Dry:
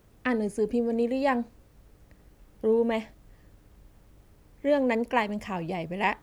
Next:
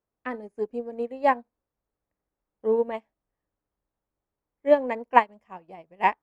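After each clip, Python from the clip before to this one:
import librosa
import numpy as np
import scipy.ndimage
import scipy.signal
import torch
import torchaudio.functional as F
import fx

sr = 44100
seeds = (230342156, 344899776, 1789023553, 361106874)

y = fx.curve_eq(x, sr, hz=(110.0, 970.0, 4500.0), db=(0, 13, 0))
y = fx.upward_expand(y, sr, threshold_db=-31.0, expansion=2.5)
y = F.gain(torch.from_numpy(y), -1.5).numpy()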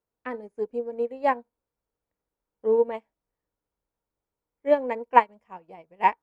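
y = fx.small_body(x, sr, hz=(470.0, 940.0, 1400.0, 2300.0), ring_ms=45, db=6)
y = F.gain(torch.from_numpy(y), -2.5).numpy()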